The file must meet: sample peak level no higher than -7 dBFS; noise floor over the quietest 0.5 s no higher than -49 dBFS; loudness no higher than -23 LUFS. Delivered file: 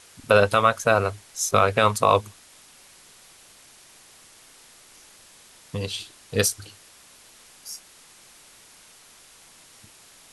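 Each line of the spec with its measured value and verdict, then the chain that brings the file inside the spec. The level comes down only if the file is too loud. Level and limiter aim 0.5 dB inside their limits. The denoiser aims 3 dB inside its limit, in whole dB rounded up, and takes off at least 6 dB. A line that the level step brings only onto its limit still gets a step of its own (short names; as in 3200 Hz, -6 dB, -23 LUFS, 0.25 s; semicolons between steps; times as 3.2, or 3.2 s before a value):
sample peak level -4.5 dBFS: fail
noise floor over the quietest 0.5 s -52 dBFS: OK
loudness -22.0 LUFS: fail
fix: gain -1.5 dB; limiter -7.5 dBFS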